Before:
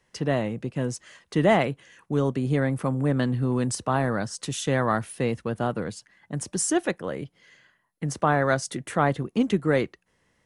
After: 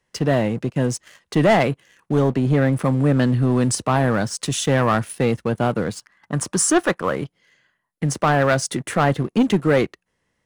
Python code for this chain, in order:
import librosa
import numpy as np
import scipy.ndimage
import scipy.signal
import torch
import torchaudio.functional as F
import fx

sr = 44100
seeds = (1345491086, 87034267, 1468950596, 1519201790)

y = fx.lowpass(x, sr, hz=3700.0, slope=6, at=(2.22, 2.73))
y = fx.peak_eq(y, sr, hz=1200.0, db=10.5, octaves=0.84, at=(5.95, 7.16))
y = fx.leveller(y, sr, passes=2)